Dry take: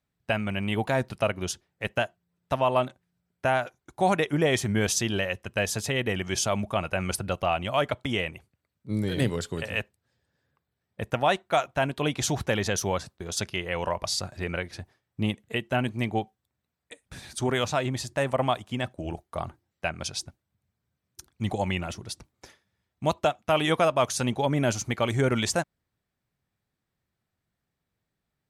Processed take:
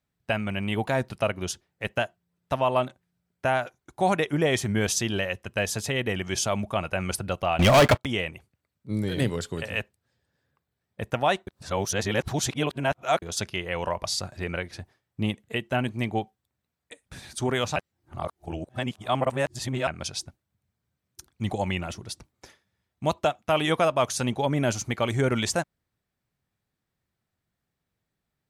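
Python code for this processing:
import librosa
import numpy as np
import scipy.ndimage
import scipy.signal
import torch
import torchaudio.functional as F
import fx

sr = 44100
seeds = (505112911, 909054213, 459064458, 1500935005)

y = fx.leveller(x, sr, passes=5, at=(7.59, 8.05))
y = fx.edit(y, sr, fx.reverse_span(start_s=11.47, length_s=1.75),
    fx.reverse_span(start_s=17.76, length_s=2.11), tone=tone)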